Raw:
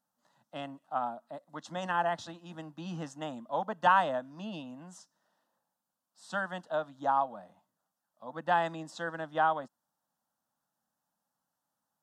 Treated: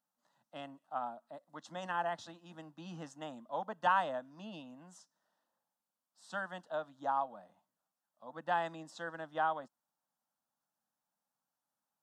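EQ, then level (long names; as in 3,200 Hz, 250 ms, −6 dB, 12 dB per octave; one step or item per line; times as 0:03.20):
low-shelf EQ 150 Hz −6 dB
−5.5 dB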